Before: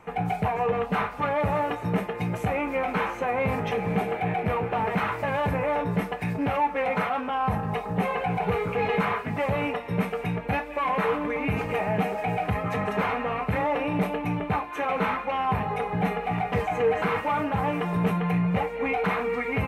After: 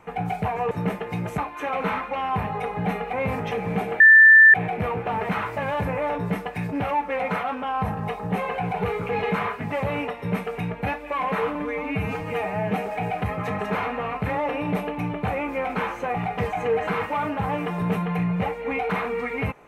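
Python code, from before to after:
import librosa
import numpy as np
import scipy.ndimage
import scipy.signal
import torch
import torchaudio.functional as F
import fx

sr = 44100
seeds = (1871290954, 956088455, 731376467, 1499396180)

y = fx.edit(x, sr, fx.cut(start_s=0.71, length_s=1.08),
    fx.swap(start_s=2.46, length_s=0.87, other_s=14.54, other_length_s=1.75),
    fx.insert_tone(at_s=4.2, length_s=0.54, hz=1770.0, db=-7.5),
    fx.stretch_span(start_s=11.21, length_s=0.79, factor=1.5), tone=tone)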